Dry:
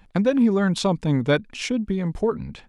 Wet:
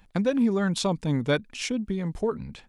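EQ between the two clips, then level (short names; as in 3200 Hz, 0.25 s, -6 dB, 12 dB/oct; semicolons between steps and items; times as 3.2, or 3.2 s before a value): high shelf 4900 Hz +6.5 dB; -4.5 dB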